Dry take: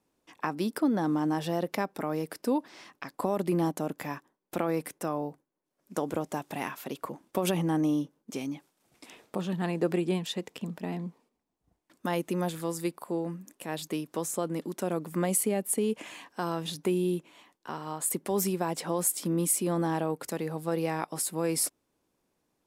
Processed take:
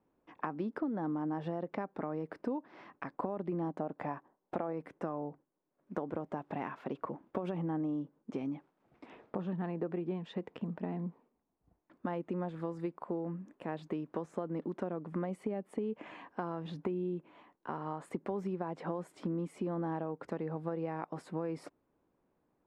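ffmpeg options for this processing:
-filter_complex "[0:a]asettb=1/sr,asplit=3[s0][s1][s2];[s0]atrim=end=3.804[s3];[s1]atrim=start=3.8:end=4.73,asetpts=PTS-STARTPTS,afade=t=in:d=0.004:c=qsin,afade=t=out:st=0.926:d=0.004:c=qsin,equalizer=f=730:t=o:w=0.9:g=7[s4];[s2]atrim=start=4.726[s5];[s3][s4]acrossfade=d=0.004:c1=hsin:c2=qsin[s6];[s6][s5]acrossfade=d=0.004:c1=qsin:c2=hsin,lowpass=1500,acompressor=threshold=0.02:ratio=6,volume=1.12"

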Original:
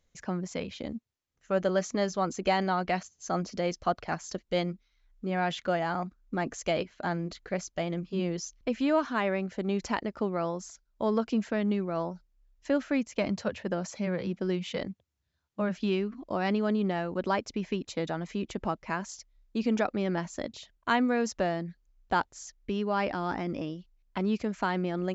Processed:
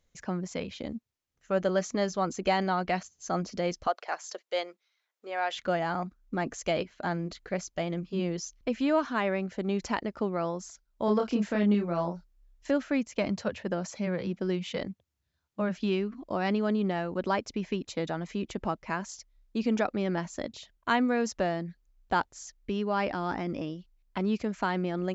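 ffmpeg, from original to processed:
-filter_complex "[0:a]asettb=1/sr,asplit=3[s0][s1][s2];[s0]atrim=end=3.874[s3];[s1]atrim=start=3.87:end=5.55,asetpts=PTS-STARTPTS,afade=t=in:d=0.004:c=qsin,afade=t=out:st=1.676:d=0.004:c=qsin,highpass=f=450:w=0.5412,highpass=f=450:w=1.3066[s4];[s2]atrim=start=5.546[s5];[s3][s4]acrossfade=d=0.004:c1=hsin:c2=qsin[s6];[s6][s5]acrossfade=d=0.004:c1=qsin:c2=hsin,asettb=1/sr,asplit=3[s7][s8][s9];[s7]atrim=end=11.054[s10];[s8]atrim=start=11.05:end=12.71,asetpts=PTS-STARTPTS,afade=t=in:d=0.004:c=qsin,afade=t=out:st=1.656:d=0.004:c=qsin,asplit=2[s11][s12];[s12]adelay=29,volume=0.708[s13];[s11][s13]amix=inputs=2:normalize=0,atrim=end_sample=73206[s14];[s9]atrim=start=12.706[s15];[s10][s14]acrossfade=d=0.004:c1=hsin:c2=qsin[s16];[s16][s15]acrossfade=d=0.004:c1=qsin:c2=hsin"

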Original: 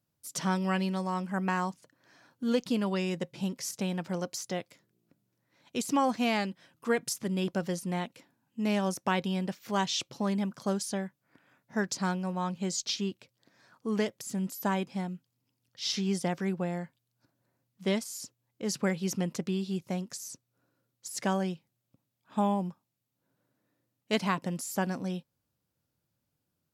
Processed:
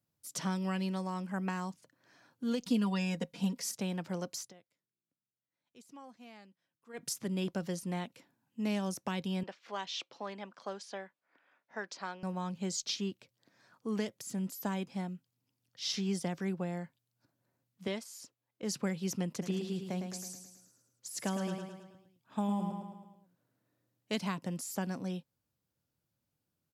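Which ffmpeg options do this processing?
-filter_complex "[0:a]asettb=1/sr,asplit=3[s0][s1][s2];[s0]atrim=end=2.624[s3];[s1]atrim=start=2.62:end=3.75,asetpts=PTS-STARTPTS,afade=t=in:d=0.004:c=qsin,afade=t=out:st=1.126:d=0.004:c=qsin,aecho=1:1:4.2:0.91,atrim=end_sample=49833[s4];[s2]atrim=start=3.746[s5];[s3][s4]acrossfade=d=0.004:c1=hsin:c2=qsin[s6];[s6][s5]acrossfade=d=0.004:c1=qsin:c2=hsin,asettb=1/sr,asplit=3[s7][s8][s9];[s7]atrim=end=9.434[s10];[s8]atrim=start=9.43:end=12.23,asetpts=PTS-STARTPTS,afade=t=in:d=0.004:c=qsin,afade=t=out:st=2.796:d=0.004:c=qsin,highpass=490,lowpass=3800[s11];[s9]atrim=start=12.226[s12];[s10][s11]acrossfade=d=0.004:c1=hsin:c2=qsin[s13];[s13][s12]acrossfade=d=0.004:c1=qsin:c2=hsin,asettb=1/sr,asplit=3[s14][s15][s16];[s14]atrim=end=17.874[s17];[s15]atrim=start=17.87:end=18.63,asetpts=PTS-STARTPTS,afade=t=in:d=0.004:c=qsin,afade=t=out:st=0.756:d=0.004:c=qsin,bass=f=250:g=-10,treble=f=4000:g=-6[s18];[s16]atrim=start=18.626[s19];[s17][s18]acrossfade=d=0.004:c1=hsin:c2=qsin[s20];[s20][s19]acrossfade=d=0.004:c1=qsin:c2=hsin,asplit=3[s21][s22][s23];[s21]afade=t=out:st=19.41:d=0.02[s24];[s22]aecho=1:1:108|216|324|432|540|648:0.447|0.237|0.125|0.0665|0.0352|0.0187,afade=t=in:st=19.41:d=0.02,afade=t=out:st=24.18:d=0.02[s25];[s23]afade=t=in:st=24.18:d=0.02[s26];[s24][s25][s26]amix=inputs=3:normalize=0,asplit=3[s27][s28][s29];[s27]atrim=end=4.53,asetpts=PTS-STARTPTS,afade=t=out:st=4.41:d=0.12:silence=0.0841395[s30];[s28]atrim=start=4.53:end=6.93,asetpts=PTS-STARTPTS,volume=0.0841[s31];[s29]atrim=start=6.93,asetpts=PTS-STARTPTS,afade=t=in:d=0.12:silence=0.0841395[s32];[s30][s31][s32]concat=n=3:v=0:a=1,acrossover=split=270|3000[s33][s34][s35];[s34]acompressor=threshold=0.0251:ratio=6[s36];[s33][s36][s35]amix=inputs=3:normalize=0,volume=0.668"

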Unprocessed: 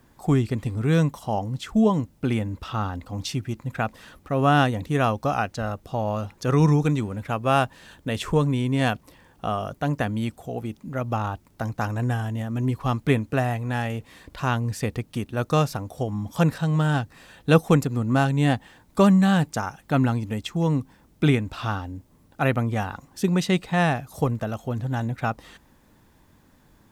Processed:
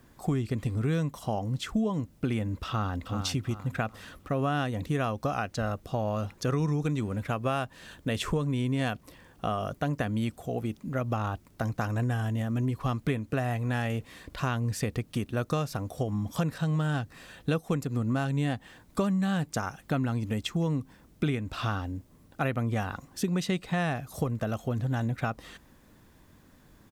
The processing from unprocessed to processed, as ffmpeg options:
-filter_complex "[0:a]asplit=2[s0][s1];[s1]afade=t=in:st=2.67:d=0.01,afade=t=out:st=3.13:d=0.01,aecho=0:1:380|760|1140|1520:0.354813|0.124185|0.0434646|0.0152126[s2];[s0][s2]amix=inputs=2:normalize=0,acompressor=threshold=0.0562:ratio=6,equalizer=f=870:w=6.3:g=-5.5"

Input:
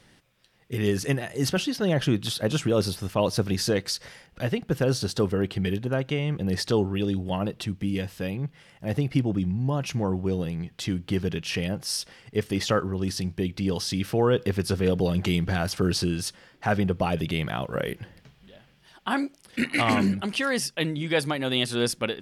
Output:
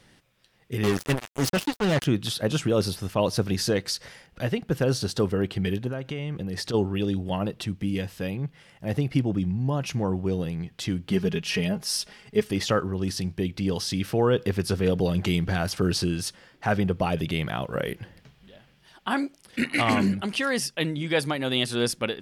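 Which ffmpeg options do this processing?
-filter_complex "[0:a]asettb=1/sr,asplit=3[s0][s1][s2];[s0]atrim=end=0.834[s3];[s1]atrim=start=0.83:end=2.05,asetpts=PTS-STARTPTS,afade=t=in:d=0.004:c=qsin,afade=t=out:st=1.216:d=0.004:c=qsin,acrusher=bits=3:mix=0:aa=0.5[s4];[s2]atrim=start=2.046[s5];[s3][s4]acrossfade=d=0.004:c1=hsin:c2=qsin[s6];[s6][s5]acrossfade=d=0.004:c1=qsin:c2=hsin,asplit=3[s7][s8][s9];[s7]afade=t=out:st=5.9:d=0.02[s10];[s8]acompressor=threshold=0.0447:ratio=6:attack=3.2:release=140:knee=1:detection=peak,afade=t=in:st=5.9:d=0.02,afade=t=out:st=6.73:d=0.02[s11];[s9]afade=t=in:st=6.73:d=0.02[s12];[s10][s11][s12]amix=inputs=3:normalize=0,asettb=1/sr,asplit=3[s13][s14][s15];[s13]atrim=end=11.104[s16];[s14]atrim=start=11.1:end=12.51,asetpts=PTS-STARTPTS,afade=t=in:d=0.004:c=qsin,afade=t=out:st=1.406:d=0.004:c=qsin,aecho=1:1:4.8:0.67,atrim=end_sample=62181[s17];[s15]atrim=start=12.506[s18];[s16][s17]acrossfade=d=0.004:c1=hsin:c2=qsin[s19];[s19][s18]acrossfade=d=0.004:c1=qsin:c2=hsin"

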